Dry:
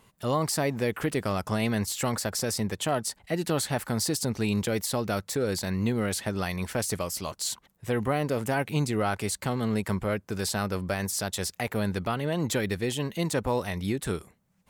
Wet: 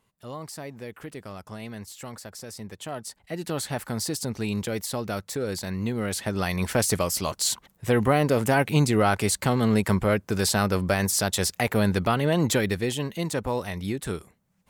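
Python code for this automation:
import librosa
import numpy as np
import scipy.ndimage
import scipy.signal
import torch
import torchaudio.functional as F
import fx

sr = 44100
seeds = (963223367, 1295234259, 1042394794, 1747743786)

y = fx.gain(x, sr, db=fx.line((2.47, -11.0), (3.68, -1.5), (5.92, -1.5), (6.71, 6.0), (12.36, 6.0), (13.22, -0.5)))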